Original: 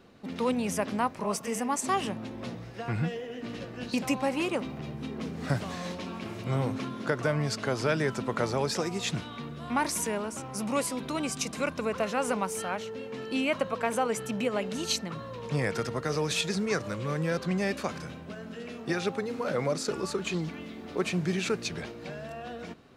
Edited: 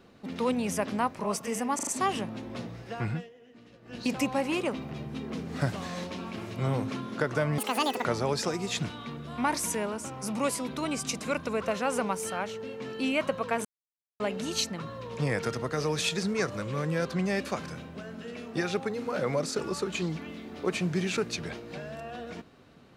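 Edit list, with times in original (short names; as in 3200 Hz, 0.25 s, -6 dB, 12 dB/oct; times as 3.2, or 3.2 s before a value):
1.75 stutter 0.04 s, 4 plays
2.93–3.93 dip -16 dB, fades 0.24 s
7.46–8.37 speed 194%
13.97–14.52 mute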